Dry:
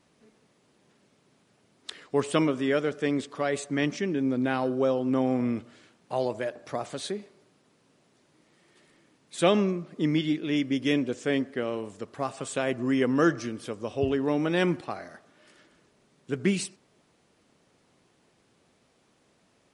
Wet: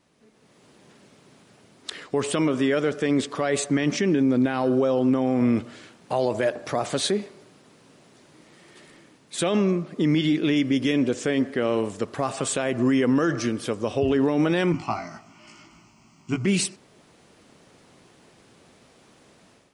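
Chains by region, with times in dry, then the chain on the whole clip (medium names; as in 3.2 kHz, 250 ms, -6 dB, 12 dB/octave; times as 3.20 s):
14.72–16.46 s: static phaser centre 2.5 kHz, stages 8 + doubling 18 ms -2.5 dB
whole clip: level rider gain up to 11 dB; peak limiter -13.5 dBFS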